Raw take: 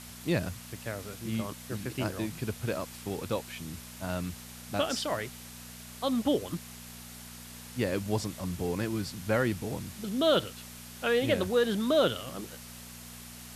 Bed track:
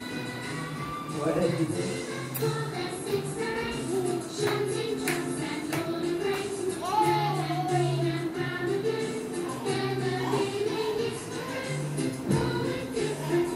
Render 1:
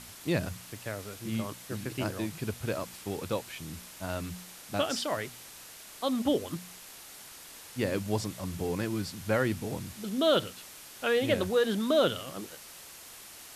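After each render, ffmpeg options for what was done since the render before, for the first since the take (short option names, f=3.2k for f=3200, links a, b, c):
-af "bandreject=f=60:t=h:w=4,bandreject=f=120:t=h:w=4,bandreject=f=180:t=h:w=4,bandreject=f=240:t=h:w=4"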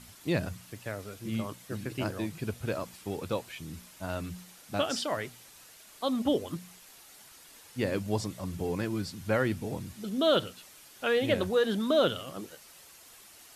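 -af "afftdn=nr=7:nf=-49"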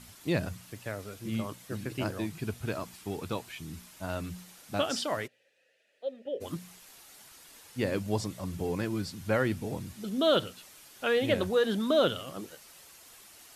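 -filter_complex "[0:a]asettb=1/sr,asplit=3[a][b][c];[a]atrim=end=2.234[d];[b]atrim=start=2.23:end=3.94,asetpts=PTS-STARTPTS,afade=t=in:d=0.004:c=qsin,afade=t=out:st=1.706:d=0.004:c=qsin,equalizer=f=530:w=6.8:g=-9[e];[c]atrim=start=3.936[f];[d][e]acrossfade=d=0.004:c1=hsin:c2=qsin[g];[g][f]acrossfade=d=0.004:c1=qsin:c2=hsin,asplit=3[h][i][j];[h]afade=t=out:st=5.26:d=0.02[k];[i]asplit=3[l][m][n];[l]bandpass=f=530:t=q:w=8,volume=0dB[o];[m]bandpass=f=1.84k:t=q:w=8,volume=-6dB[p];[n]bandpass=f=2.48k:t=q:w=8,volume=-9dB[q];[o][p][q]amix=inputs=3:normalize=0,afade=t=in:st=5.26:d=0.02,afade=t=out:st=6.4:d=0.02[r];[j]afade=t=in:st=6.4:d=0.02[s];[k][r][s]amix=inputs=3:normalize=0"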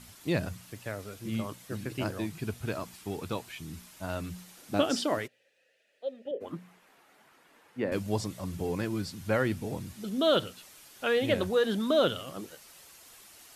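-filter_complex "[0:a]asettb=1/sr,asplit=3[a][b][c];[a]atrim=end=4.574[d];[b]atrim=start=4.57:end=5.19,asetpts=PTS-STARTPTS,afade=t=in:d=0.004:c=qsin,afade=t=out:st=0.616:d=0.004:c=qsin,equalizer=f=320:w=1.2:g=8.5[e];[c]atrim=start=5.186[f];[d][e]acrossfade=d=0.004:c1=hsin:c2=qsin[g];[g][f]acrossfade=d=0.004:c1=qsin:c2=hsin,asettb=1/sr,asplit=3[h][i][j];[h]atrim=end=6.314[k];[i]atrim=start=6.31:end=7.92,asetpts=PTS-STARTPTS,afade=t=in:d=0.004:c=qsin,afade=t=out:st=1.606:d=0.004:c=qsin,acrossover=split=150 2400:gain=0.141 1 0.126[l][m][n];[l][m][n]amix=inputs=3:normalize=0[o];[j]atrim=start=7.916[p];[k][o]acrossfade=d=0.004:c1=hsin:c2=qsin[q];[q][p]acrossfade=d=0.004:c1=qsin:c2=hsin"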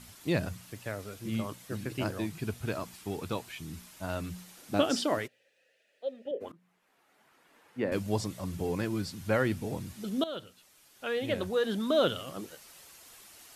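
-filter_complex "[0:a]asplit=3[a][b][c];[a]atrim=end=6.52,asetpts=PTS-STARTPTS,afade=t=out:st=6.516:d=0.004:c=hsin:silence=0.0630957[d];[b]atrim=start=6.52:end=10.24,asetpts=PTS-STARTPTS,afade=t=in:d=1.28:silence=0.0630957,afade=t=out:st=3.716:d=0.004:c=hsin:silence=0.158489[e];[c]atrim=start=10.24,asetpts=PTS-STARTPTS,afade=t=in:d=2.01:silence=0.158489[f];[d][e][f]concat=n=3:v=0:a=1"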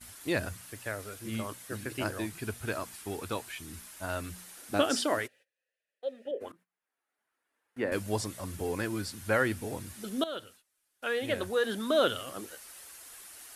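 -af "agate=range=-21dB:threshold=-56dB:ratio=16:detection=peak,equalizer=f=160:t=o:w=0.67:g=-10,equalizer=f=1.6k:t=o:w=0.67:g=5,equalizer=f=10k:t=o:w=0.67:g=8"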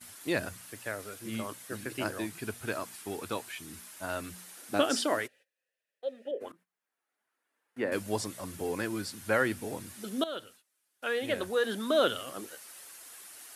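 -af "highpass=130"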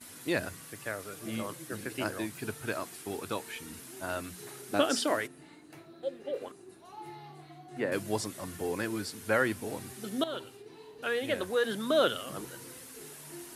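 -filter_complex "[1:a]volume=-21.5dB[a];[0:a][a]amix=inputs=2:normalize=0"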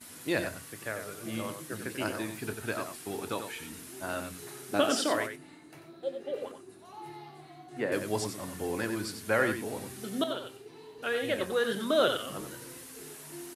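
-filter_complex "[0:a]asplit=2[a][b];[b]adelay=26,volume=-13dB[c];[a][c]amix=inputs=2:normalize=0,asplit=2[d][e];[e]aecho=0:1:92:0.422[f];[d][f]amix=inputs=2:normalize=0"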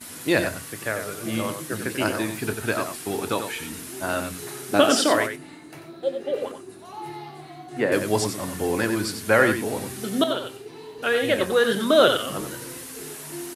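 -af "volume=9dB"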